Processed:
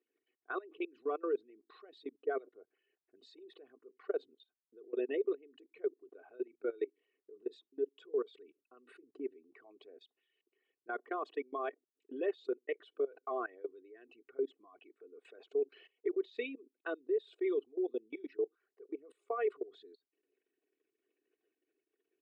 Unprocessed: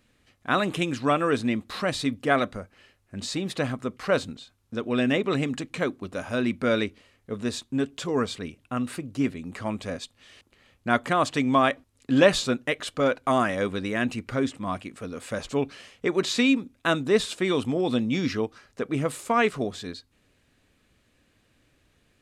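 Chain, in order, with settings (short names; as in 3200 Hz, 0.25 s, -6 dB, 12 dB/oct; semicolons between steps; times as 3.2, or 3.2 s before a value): formant sharpening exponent 2; resonant high shelf 4300 Hz -13 dB, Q 1.5; comb 2.7 ms, depth 75%; level quantiser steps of 22 dB; ladder high-pass 360 Hz, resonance 60%; gain -6.5 dB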